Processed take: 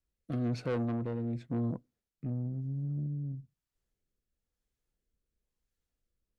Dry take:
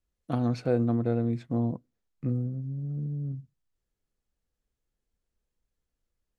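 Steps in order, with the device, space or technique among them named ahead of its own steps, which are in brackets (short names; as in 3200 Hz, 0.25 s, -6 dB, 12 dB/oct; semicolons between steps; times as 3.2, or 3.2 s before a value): overdriven rotary cabinet (tube stage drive 27 dB, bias 0.25; rotary speaker horn 1 Hz)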